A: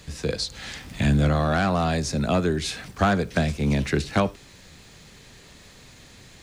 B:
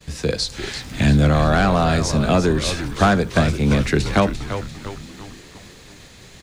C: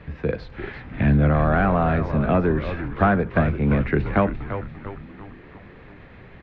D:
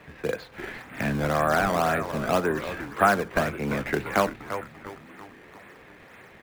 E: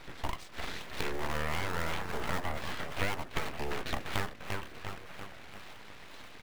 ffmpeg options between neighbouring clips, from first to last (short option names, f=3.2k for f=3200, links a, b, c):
-filter_complex "[0:a]asplit=2[a][b];[b]asplit=6[c][d][e][f][g][h];[c]adelay=345,afreqshift=-100,volume=-9.5dB[i];[d]adelay=690,afreqshift=-200,volume=-15.3dB[j];[e]adelay=1035,afreqshift=-300,volume=-21.2dB[k];[f]adelay=1380,afreqshift=-400,volume=-27dB[l];[g]adelay=1725,afreqshift=-500,volume=-32.9dB[m];[h]adelay=2070,afreqshift=-600,volume=-38.7dB[n];[i][j][k][l][m][n]amix=inputs=6:normalize=0[o];[a][o]amix=inputs=2:normalize=0,agate=range=-33dB:threshold=-45dB:ratio=3:detection=peak,volume=5dB"
-af "lowpass=f=2.2k:w=0.5412,lowpass=f=2.2k:w=1.3066,acompressor=mode=upward:threshold=-35dB:ratio=2.5,volume=-2.5dB"
-filter_complex "[0:a]highpass=f=840:p=1,asplit=2[a][b];[b]acrusher=samples=19:mix=1:aa=0.000001:lfo=1:lforange=30.4:lforate=1.9,volume=-5.5dB[c];[a][c]amix=inputs=2:normalize=0"
-af "acompressor=threshold=-33dB:ratio=3,aeval=exprs='abs(val(0))':c=same,volume=2dB"